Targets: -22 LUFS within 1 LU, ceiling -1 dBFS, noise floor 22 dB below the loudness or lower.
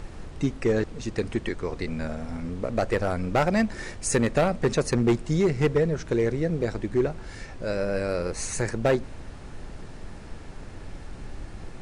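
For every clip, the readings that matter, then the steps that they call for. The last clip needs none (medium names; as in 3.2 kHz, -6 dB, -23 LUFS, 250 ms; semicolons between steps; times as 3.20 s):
clipped samples 0.9%; clipping level -15.5 dBFS; noise floor -41 dBFS; noise floor target -49 dBFS; loudness -26.5 LUFS; peak level -15.5 dBFS; loudness target -22.0 LUFS
-> clip repair -15.5 dBFS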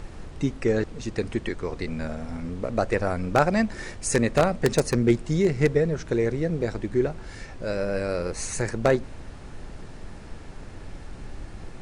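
clipped samples 0.0%; noise floor -41 dBFS; noise floor target -48 dBFS
-> noise print and reduce 7 dB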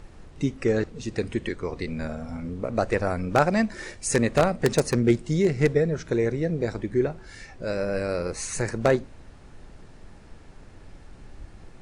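noise floor -48 dBFS; loudness -26.0 LUFS; peak level -6.5 dBFS; loudness target -22.0 LUFS
-> trim +4 dB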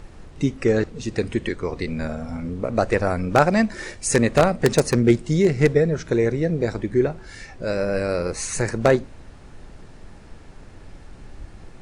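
loudness -22.0 LUFS; peak level -2.5 dBFS; noise floor -44 dBFS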